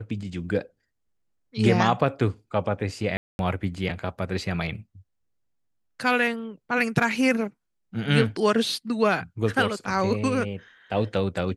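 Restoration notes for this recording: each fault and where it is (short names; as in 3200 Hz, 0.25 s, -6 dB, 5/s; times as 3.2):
3.17–3.39 gap 0.221 s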